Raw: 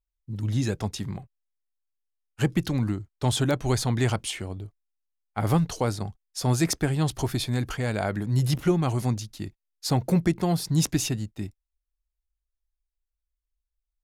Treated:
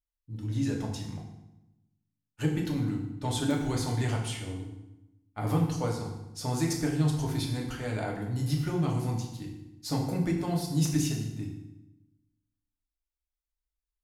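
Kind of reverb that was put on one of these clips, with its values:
feedback delay network reverb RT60 0.91 s, low-frequency decay 1.4×, high-frequency decay 0.85×, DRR −1.5 dB
level −9.5 dB

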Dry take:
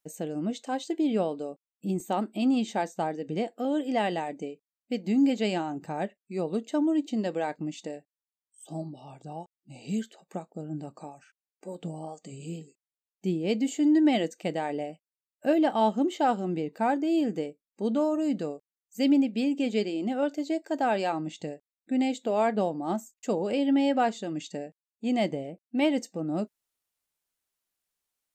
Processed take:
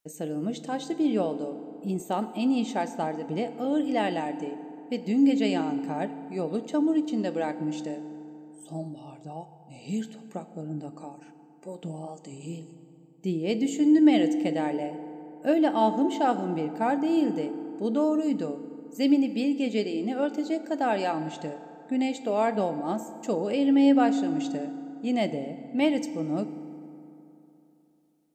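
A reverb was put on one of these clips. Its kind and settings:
feedback delay network reverb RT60 3.1 s, high-frequency decay 0.5×, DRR 11 dB

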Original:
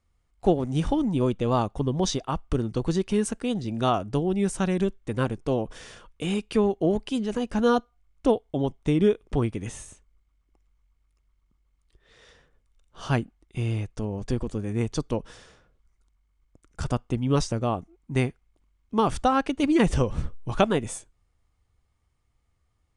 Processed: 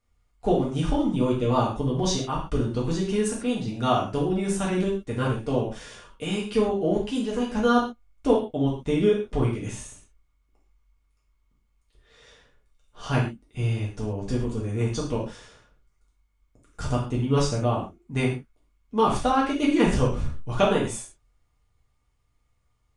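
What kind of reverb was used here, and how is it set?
reverb whose tail is shaped and stops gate 160 ms falling, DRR −5 dB
level −4.5 dB

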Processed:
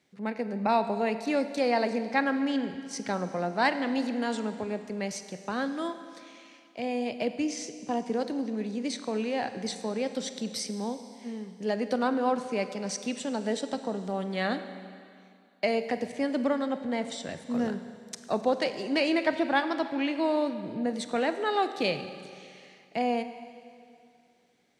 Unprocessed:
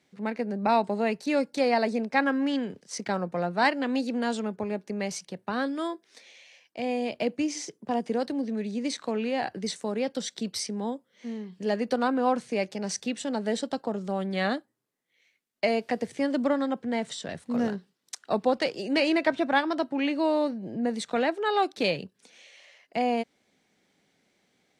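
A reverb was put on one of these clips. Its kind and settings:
four-comb reverb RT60 2.4 s, combs from 33 ms, DRR 10 dB
level −2 dB

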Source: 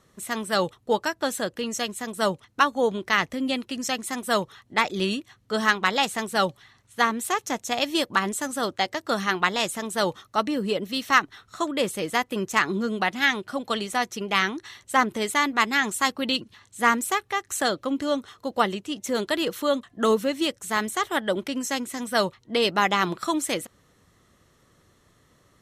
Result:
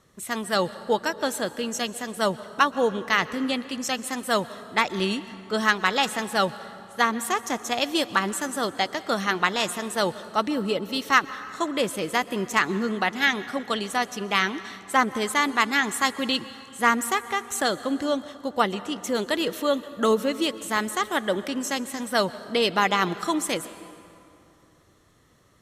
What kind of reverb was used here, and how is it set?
dense smooth reverb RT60 2.8 s, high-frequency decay 0.6×, pre-delay 110 ms, DRR 15 dB

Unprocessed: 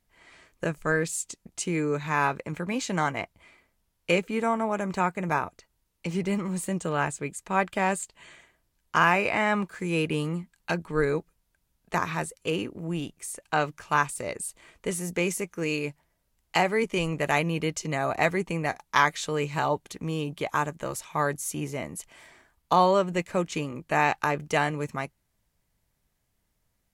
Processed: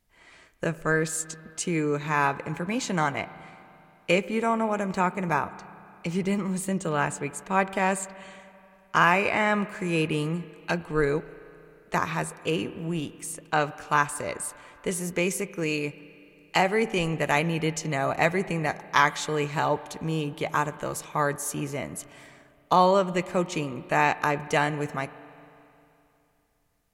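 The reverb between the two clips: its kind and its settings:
spring reverb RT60 2.9 s, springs 31/44 ms, chirp 25 ms, DRR 15.5 dB
level +1 dB

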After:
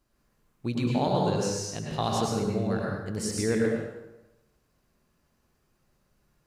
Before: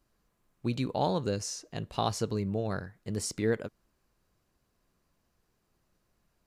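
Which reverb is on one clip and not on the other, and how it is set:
dense smooth reverb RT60 1 s, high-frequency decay 0.75×, pre-delay 90 ms, DRR −2.5 dB

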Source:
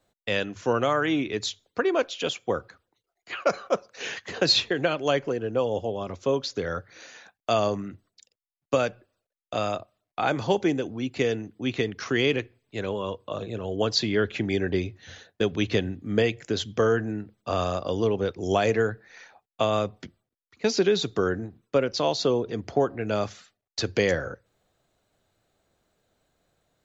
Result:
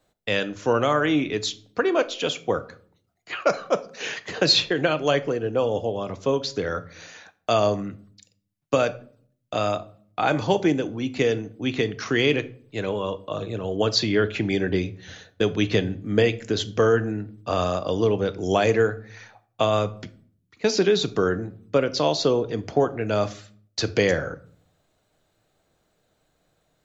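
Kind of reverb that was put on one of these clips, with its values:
rectangular room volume 590 cubic metres, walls furnished, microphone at 0.52 metres
level +2.5 dB

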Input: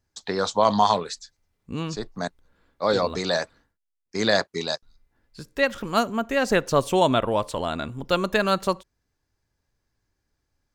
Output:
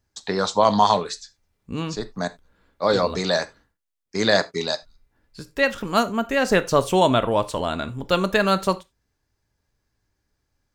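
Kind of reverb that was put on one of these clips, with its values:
reverb whose tail is shaped and stops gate 110 ms falling, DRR 12 dB
level +2 dB

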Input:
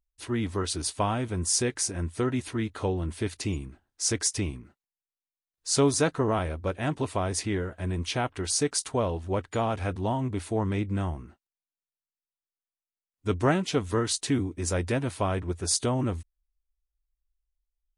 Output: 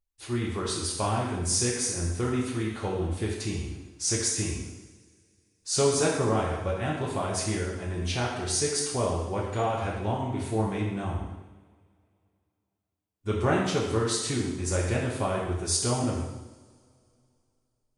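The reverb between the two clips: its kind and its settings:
coupled-rooms reverb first 0.96 s, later 2.9 s, from −23 dB, DRR −3.5 dB
level −4.5 dB

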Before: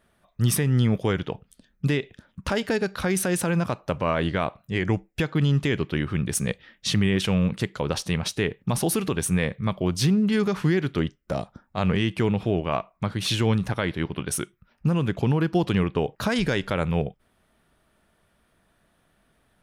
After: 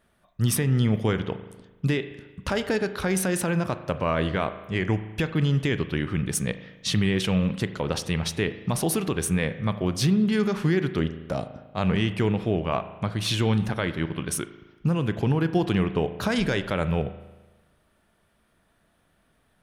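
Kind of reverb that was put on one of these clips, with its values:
spring reverb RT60 1.2 s, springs 37 ms, chirp 65 ms, DRR 11 dB
level −1 dB

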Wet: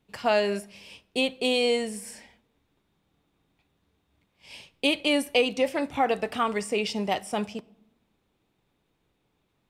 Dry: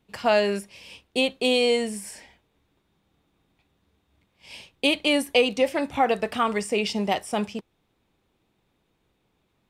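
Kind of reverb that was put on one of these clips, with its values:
rectangular room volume 3,600 cubic metres, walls furnished, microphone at 0.34 metres
level −2.5 dB

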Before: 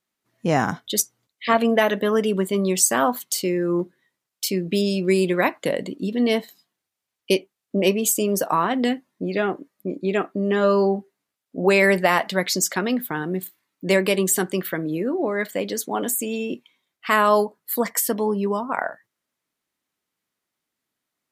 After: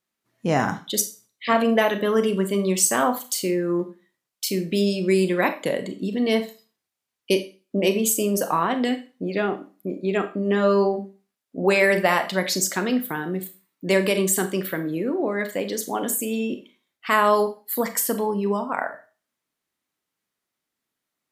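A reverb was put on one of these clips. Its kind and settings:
four-comb reverb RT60 0.34 s, combs from 28 ms, DRR 8.5 dB
level −1.5 dB

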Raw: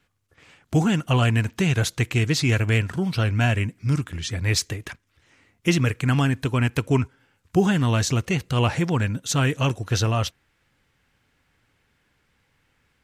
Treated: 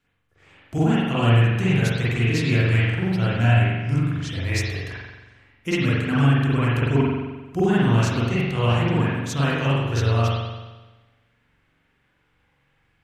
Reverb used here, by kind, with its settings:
spring reverb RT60 1.2 s, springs 43 ms, chirp 65 ms, DRR −9 dB
level −8 dB

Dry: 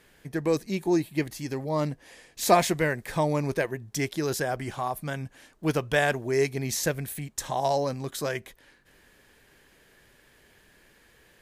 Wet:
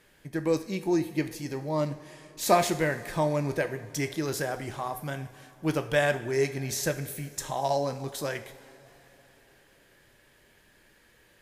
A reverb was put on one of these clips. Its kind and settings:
coupled-rooms reverb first 0.5 s, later 3.8 s, from −16 dB, DRR 7.5 dB
level −2.5 dB

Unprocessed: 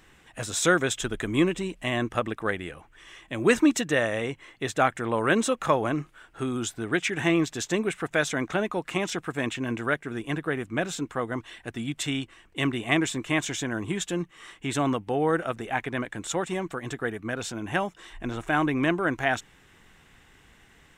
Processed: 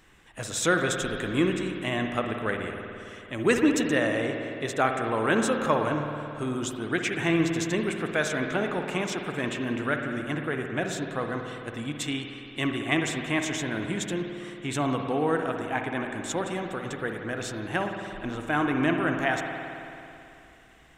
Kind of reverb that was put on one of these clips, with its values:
spring reverb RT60 2.8 s, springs 54 ms, chirp 40 ms, DRR 3.5 dB
level −2 dB

